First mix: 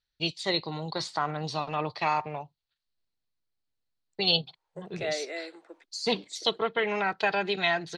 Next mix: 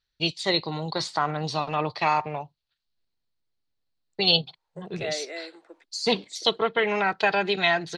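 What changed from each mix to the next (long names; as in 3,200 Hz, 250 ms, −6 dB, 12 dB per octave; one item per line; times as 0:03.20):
first voice +4.0 dB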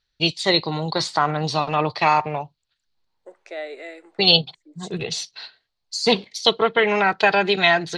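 first voice +5.5 dB
second voice: entry −1.50 s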